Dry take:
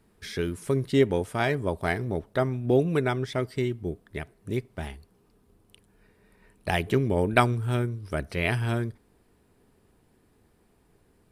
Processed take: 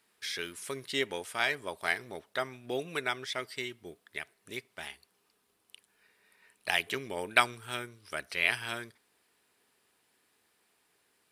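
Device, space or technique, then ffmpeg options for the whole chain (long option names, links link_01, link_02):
filter by subtraction: -filter_complex "[0:a]asplit=2[link_01][link_02];[link_02]lowpass=2900,volume=-1[link_03];[link_01][link_03]amix=inputs=2:normalize=0,volume=1.5dB"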